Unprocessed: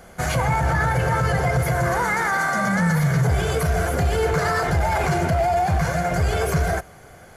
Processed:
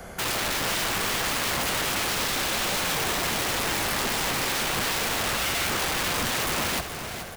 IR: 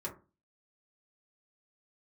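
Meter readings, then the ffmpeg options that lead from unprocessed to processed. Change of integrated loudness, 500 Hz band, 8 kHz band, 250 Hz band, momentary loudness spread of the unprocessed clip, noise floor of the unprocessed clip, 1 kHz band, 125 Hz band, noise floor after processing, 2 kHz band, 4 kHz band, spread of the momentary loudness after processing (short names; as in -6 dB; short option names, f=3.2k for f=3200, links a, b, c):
-4.0 dB, -9.0 dB, +6.5 dB, -8.5 dB, 2 LU, -46 dBFS, -7.0 dB, -17.0 dB, -35 dBFS, -3.0 dB, +10.0 dB, 1 LU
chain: -filter_complex "[0:a]acrossover=split=160|770|4100[a][b][c][d];[a]acompressor=threshold=-30dB:ratio=4[e];[b]acompressor=threshold=-32dB:ratio=4[f];[c]acompressor=threshold=-33dB:ratio=4[g];[d]acompressor=threshold=-51dB:ratio=4[h];[e][f][g][h]amix=inputs=4:normalize=0,aeval=exprs='(mod(22.4*val(0)+1,2)-1)/22.4':c=same,aecho=1:1:426|852|1278|1704|2130:0.335|0.161|0.0772|0.037|0.0178,volume=4.5dB"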